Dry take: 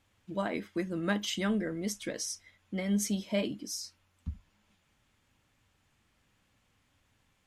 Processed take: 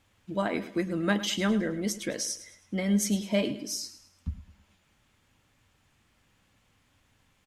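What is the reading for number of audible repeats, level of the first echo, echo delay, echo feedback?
3, -14.5 dB, 106 ms, 40%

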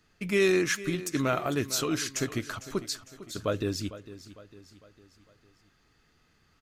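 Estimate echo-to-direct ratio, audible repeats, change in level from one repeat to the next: -14.5 dB, 4, -6.5 dB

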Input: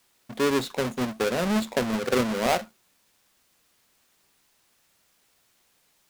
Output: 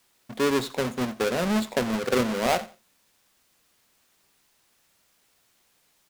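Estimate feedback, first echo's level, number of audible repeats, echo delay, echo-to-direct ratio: 22%, -18.5 dB, 2, 88 ms, -18.5 dB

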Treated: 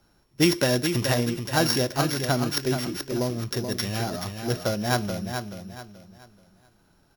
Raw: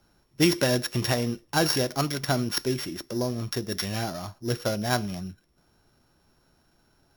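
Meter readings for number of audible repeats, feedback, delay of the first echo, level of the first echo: 3, 32%, 430 ms, -7.0 dB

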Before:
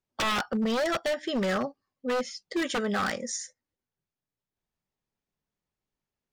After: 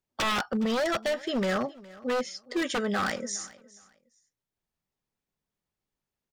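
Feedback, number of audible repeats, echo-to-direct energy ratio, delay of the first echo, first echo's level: 22%, 2, -21.0 dB, 414 ms, -21.0 dB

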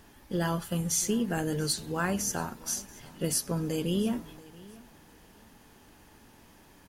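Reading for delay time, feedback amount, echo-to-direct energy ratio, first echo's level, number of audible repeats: 682 ms, 25%, -21.0 dB, -21.5 dB, 2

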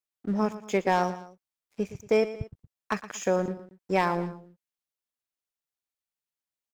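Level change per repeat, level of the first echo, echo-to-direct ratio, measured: -6.5 dB, -14.5 dB, -13.5 dB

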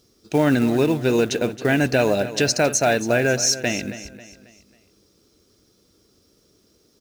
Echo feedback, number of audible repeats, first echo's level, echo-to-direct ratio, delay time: 41%, 3, -14.0 dB, -13.0 dB, 271 ms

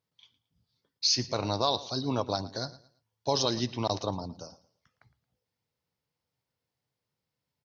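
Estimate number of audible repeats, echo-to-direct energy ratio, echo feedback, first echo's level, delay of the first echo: 2, -17.5 dB, 29%, -18.0 dB, 112 ms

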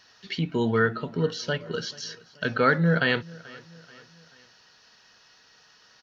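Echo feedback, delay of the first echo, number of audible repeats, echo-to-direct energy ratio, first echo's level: 48%, 434 ms, 3, -21.0 dB, -22.0 dB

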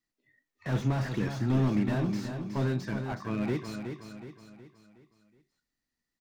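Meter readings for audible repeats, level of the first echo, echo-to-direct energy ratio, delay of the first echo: 4, -7.5 dB, -6.5 dB, 369 ms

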